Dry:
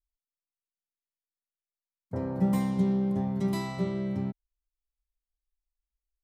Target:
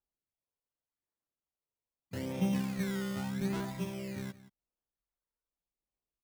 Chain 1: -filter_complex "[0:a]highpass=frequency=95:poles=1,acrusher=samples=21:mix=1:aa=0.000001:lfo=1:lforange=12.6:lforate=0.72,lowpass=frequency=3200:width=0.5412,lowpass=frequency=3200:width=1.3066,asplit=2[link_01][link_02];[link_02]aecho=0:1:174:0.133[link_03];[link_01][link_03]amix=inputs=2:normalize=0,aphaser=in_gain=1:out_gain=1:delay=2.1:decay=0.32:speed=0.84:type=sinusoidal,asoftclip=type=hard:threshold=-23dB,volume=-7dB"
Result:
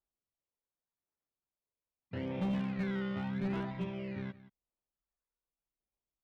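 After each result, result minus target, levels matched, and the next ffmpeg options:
hard clipping: distortion +16 dB; 4,000 Hz band −4.0 dB
-filter_complex "[0:a]highpass=frequency=95:poles=1,acrusher=samples=21:mix=1:aa=0.000001:lfo=1:lforange=12.6:lforate=0.72,lowpass=frequency=3200:width=0.5412,lowpass=frequency=3200:width=1.3066,asplit=2[link_01][link_02];[link_02]aecho=0:1:174:0.133[link_03];[link_01][link_03]amix=inputs=2:normalize=0,aphaser=in_gain=1:out_gain=1:delay=2.1:decay=0.32:speed=0.84:type=sinusoidal,asoftclip=type=hard:threshold=-16.5dB,volume=-7dB"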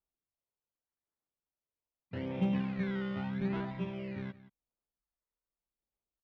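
4,000 Hz band −4.5 dB
-filter_complex "[0:a]highpass=frequency=95:poles=1,acrusher=samples=21:mix=1:aa=0.000001:lfo=1:lforange=12.6:lforate=0.72,asplit=2[link_01][link_02];[link_02]aecho=0:1:174:0.133[link_03];[link_01][link_03]amix=inputs=2:normalize=0,aphaser=in_gain=1:out_gain=1:delay=2.1:decay=0.32:speed=0.84:type=sinusoidal,asoftclip=type=hard:threshold=-16.5dB,volume=-7dB"

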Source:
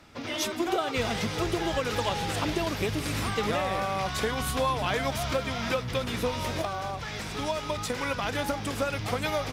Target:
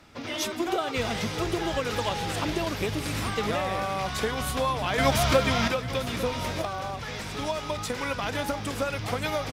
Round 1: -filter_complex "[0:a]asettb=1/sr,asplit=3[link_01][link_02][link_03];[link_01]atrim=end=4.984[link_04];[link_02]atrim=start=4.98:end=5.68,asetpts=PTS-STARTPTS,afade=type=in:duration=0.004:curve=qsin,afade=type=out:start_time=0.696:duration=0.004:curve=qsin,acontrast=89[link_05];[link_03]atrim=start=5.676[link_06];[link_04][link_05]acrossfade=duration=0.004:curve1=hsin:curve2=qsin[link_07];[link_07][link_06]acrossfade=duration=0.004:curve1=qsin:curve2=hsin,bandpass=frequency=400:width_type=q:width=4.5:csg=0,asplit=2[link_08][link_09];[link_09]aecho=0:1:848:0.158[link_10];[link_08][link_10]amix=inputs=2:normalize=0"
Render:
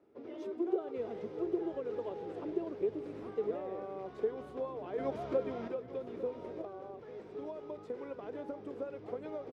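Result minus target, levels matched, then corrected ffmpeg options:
500 Hz band +4.5 dB
-filter_complex "[0:a]asettb=1/sr,asplit=3[link_01][link_02][link_03];[link_01]atrim=end=4.984[link_04];[link_02]atrim=start=4.98:end=5.68,asetpts=PTS-STARTPTS,afade=type=in:duration=0.004:curve=qsin,afade=type=out:start_time=0.696:duration=0.004:curve=qsin,acontrast=89[link_05];[link_03]atrim=start=5.676[link_06];[link_04][link_05]acrossfade=duration=0.004:curve1=hsin:curve2=qsin[link_07];[link_07][link_06]acrossfade=duration=0.004:curve1=qsin:curve2=hsin,asplit=2[link_08][link_09];[link_09]aecho=0:1:848:0.158[link_10];[link_08][link_10]amix=inputs=2:normalize=0"

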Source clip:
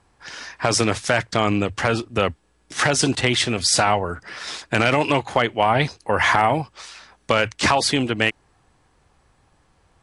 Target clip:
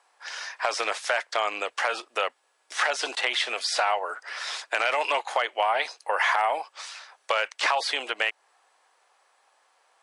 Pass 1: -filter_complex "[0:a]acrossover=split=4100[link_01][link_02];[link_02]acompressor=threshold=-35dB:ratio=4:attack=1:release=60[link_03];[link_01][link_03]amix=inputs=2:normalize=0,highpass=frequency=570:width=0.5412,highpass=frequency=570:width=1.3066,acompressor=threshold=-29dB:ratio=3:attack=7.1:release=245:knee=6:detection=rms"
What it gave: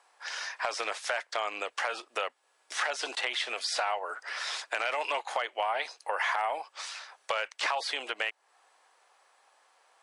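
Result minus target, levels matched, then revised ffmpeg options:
downward compressor: peak gain reduction +6.5 dB
-filter_complex "[0:a]acrossover=split=4100[link_01][link_02];[link_02]acompressor=threshold=-35dB:ratio=4:attack=1:release=60[link_03];[link_01][link_03]amix=inputs=2:normalize=0,highpass=frequency=570:width=0.5412,highpass=frequency=570:width=1.3066,acompressor=threshold=-19.5dB:ratio=3:attack=7.1:release=245:knee=6:detection=rms"

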